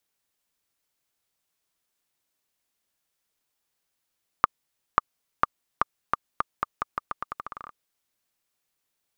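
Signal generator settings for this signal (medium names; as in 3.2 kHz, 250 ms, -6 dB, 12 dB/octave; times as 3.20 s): bouncing ball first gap 0.54 s, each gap 0.84, 1.2 kHz, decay 20 ms -2 dBFS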